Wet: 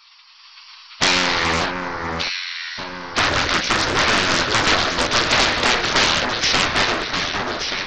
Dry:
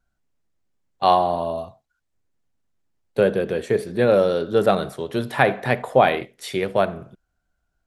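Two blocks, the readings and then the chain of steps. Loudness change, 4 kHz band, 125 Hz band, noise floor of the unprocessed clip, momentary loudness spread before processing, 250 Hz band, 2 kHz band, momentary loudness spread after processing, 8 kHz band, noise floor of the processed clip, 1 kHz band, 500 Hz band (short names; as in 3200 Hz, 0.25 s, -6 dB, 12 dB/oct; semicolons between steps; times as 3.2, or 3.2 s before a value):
+3.0 dB, +18.0 dB, +0.5 dB, -75 dBFS, 11 LU, +0.5 dB, +11.0 dB, 9 LU, n/a, -47 dBFS, +2.0 dB, -6.0 dB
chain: hard clip -4 dBFS, distortion -35 dB; sample leveller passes 5; band noise 1100–3900 Hz -42 dBFS; rippled Chebyshev low-pass 5700 Hz, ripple 6 dB; bell 560 Hz -10 dB 2.8 oct; spectral gate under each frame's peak -10 dB weak; AGC gain up to 8 dB; high shelf 4500 Hz +6.5 dB; compressor 2.5:1, threshold -24 dBFS, peak gain reduction 9 dB; echo with dull and thin repeats by turns 0.589 s, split 1700 Hz, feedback 71%, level -4 dB; Doppler distortion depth 0.7 ms; gain +6.5 dB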